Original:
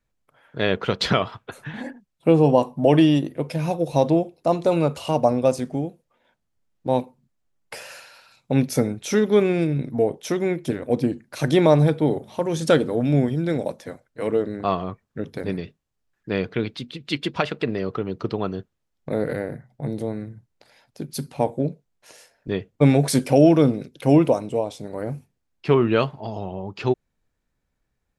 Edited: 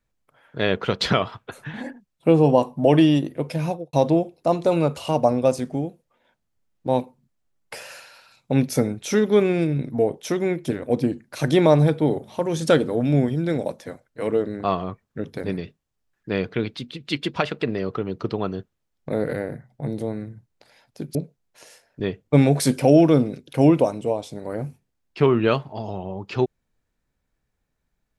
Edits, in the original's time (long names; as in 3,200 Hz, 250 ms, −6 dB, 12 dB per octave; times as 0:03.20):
0:03.63–0:03.93: fade out and dull
0:21.15–0:21.63: remove